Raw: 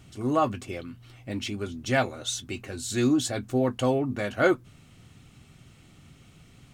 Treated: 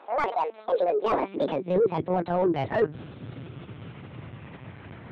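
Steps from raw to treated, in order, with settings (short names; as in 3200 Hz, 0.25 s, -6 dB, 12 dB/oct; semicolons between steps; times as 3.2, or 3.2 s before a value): speed glide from 195% -> 68%; in parallel at -6 dB: soft clip -23.5 dBFS, distortion -10 dB; on the sum: LPC vocoder at 8 kHz pitch kept; high-pass sweep 810 Hz -> 110 Hz, 0.46–2.01; reverse; compressor 6:1, threshold -30 dBFS, peak gain reduction 15 dB; reverse; overdrive pedal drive 18 dB, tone 2600 Hz, clips at -17 dBFS; tilt shelf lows +7 dB, about 1200 Hz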